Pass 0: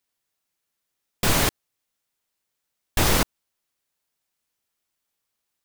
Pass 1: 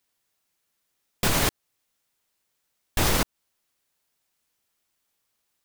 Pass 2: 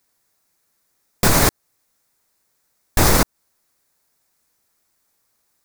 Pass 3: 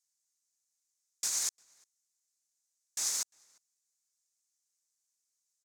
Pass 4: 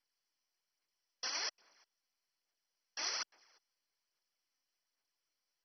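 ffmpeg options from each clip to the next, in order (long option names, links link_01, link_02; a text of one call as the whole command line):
ffmpeg -i in.wav -af "alimiter=limit=-15.5dB:level=0:latency=1:release=211,volume=4dB" out.wav
ffmpeg -i in.wav -af "equalizer=frequency=3000:width=2.4:gain=-10,volume=8.5dB" out.wav
ffmpeg -i in.wav -filter_complex "[0:a]bandpass=frequency=6700:width_type=q:width=3:csg=0,asplit=2[link_01][link_02];[link_02]adelay=349.9,volume=-27dB,highshelf=frequency=4000:gain=-7.87[link_03];[link_01][link_03]amix=inputs=2:normalize=0,volume=-5.5dB" out.wav
ffmpeg -i in.wav -filter_complex "[0:a]aphaser=in_gain=1:out_gain=1:delay=3.9:decay=0.54:speed=1.2:type=sinusoidal,acrossover=split=260 4300:gain=0.0631 1 0.224[link_01][link_02][link_03];[link_01][link_02][link_03]amix=inputs=3:normalize=0,volume=4dB" -ar 32000 -c:a mp2 -b:a 32k out.mp2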